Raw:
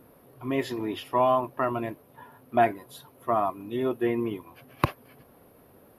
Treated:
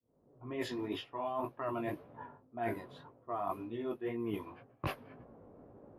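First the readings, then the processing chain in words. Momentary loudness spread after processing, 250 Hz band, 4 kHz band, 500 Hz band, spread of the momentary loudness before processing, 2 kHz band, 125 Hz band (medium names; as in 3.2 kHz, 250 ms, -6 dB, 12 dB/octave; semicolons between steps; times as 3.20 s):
17 LU, -9.5 dB, -6.5 dB, -11.5 dB, 15 LU, -10.0 dB, -9.5 dB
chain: fade-in on the opening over 0.88 s; chorus 1.9 Hz, delay 17 ms, depth 3.8 ms; reverse; compression 20:1, threshold -37 dBFS, peak gain reduction 20.5 dB; reverse; level-controlled noise filter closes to 600 Hz, open at -35.5 dBFS; trim +3.5 dB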